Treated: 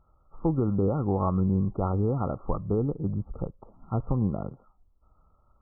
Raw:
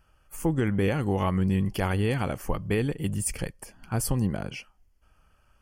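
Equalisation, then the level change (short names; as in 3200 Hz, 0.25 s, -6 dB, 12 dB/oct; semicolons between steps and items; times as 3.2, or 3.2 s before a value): brick-wall FIR low-pass 1400 Hz; 0.0 dB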